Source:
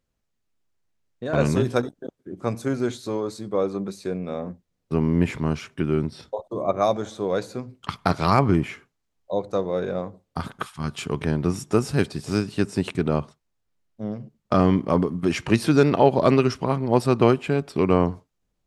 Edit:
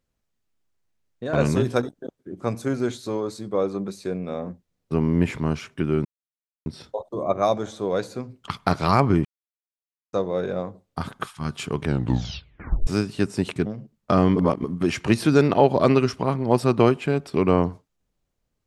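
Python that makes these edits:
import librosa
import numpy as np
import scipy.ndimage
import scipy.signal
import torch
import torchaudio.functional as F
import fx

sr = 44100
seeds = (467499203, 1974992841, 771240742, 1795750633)

y = fx.edit(x, sr, fx.insert_silence(at_s=6.05, length_s=0.61),
    fx.silence(start_s=8.64, length_s=0.88),
    fx.tape_stop(start_s=11.23, length_s=1.03),
    fx.cut(start_s=13.05, length_s=1.03),
    fx.reverse_span(start_s=14.78, length_s=0.28), tone=tone)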